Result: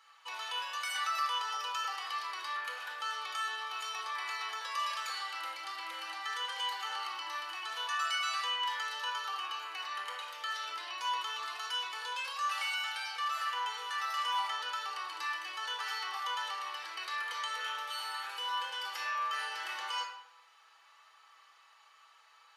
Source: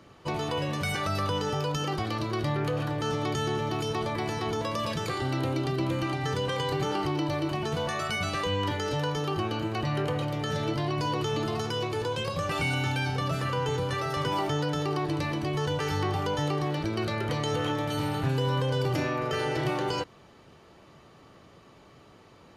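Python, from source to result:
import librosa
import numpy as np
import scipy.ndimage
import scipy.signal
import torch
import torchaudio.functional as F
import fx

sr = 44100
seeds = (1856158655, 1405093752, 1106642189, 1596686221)

y = scipy.signal.sosfilt(scipy.signal.butter(4, 1000.0, 'highpass', fs=sr, output='sos'), x)
y = y + 0.38 * np.pad(y, (int(6.1 * sr / 1000.0), 0))[:len(y)]
y = fx.room_shoebox(y, sr, seeds[0], volume_m3=2300.0, walls='furnished', distance_m=4.1)
y = y * librosa.db_to_amplitude(-6.0)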